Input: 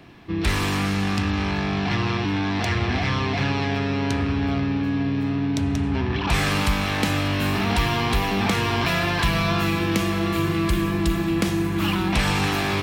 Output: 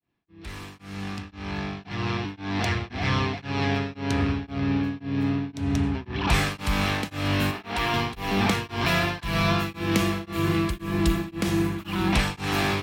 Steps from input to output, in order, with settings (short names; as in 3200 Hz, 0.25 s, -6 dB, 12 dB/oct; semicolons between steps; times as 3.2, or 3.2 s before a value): opening faded in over 3.05 s; 7.51–7.94 tone controls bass -10 dB, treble -5 dB; beating tremolo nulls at 1.9 Hz